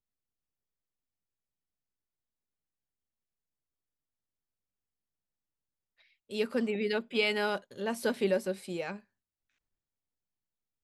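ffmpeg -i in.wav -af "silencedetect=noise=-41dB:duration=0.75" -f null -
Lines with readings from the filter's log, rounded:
silence_start: 0.00
silence_end: 6.31 | silence_duration: 6.31
silence_start: 8.97
silence_end: 10.84 | silence_duration: 1.87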